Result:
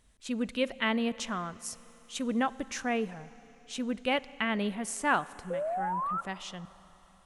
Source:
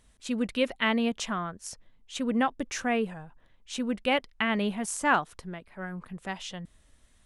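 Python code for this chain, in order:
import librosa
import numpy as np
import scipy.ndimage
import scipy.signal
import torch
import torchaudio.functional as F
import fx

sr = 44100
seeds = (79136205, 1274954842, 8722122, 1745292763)

y = fx.high_shelf(x, sr, hz=8700.0, db=9.5, at=(1.35, 2.22))
y = fx.spec_paint(y, sr, seeds[0], shape='rise', start_s=5.5, length_s=0.71, low_hz=500.0, high_hz=1400.0, level_db=-29.0)
y = fx.rev_schroeder(y, sr, rt60_s=3.8, comb_ms=32, drr_db=18.0)
y = y * librosa.db_to_amplitude(-3.0)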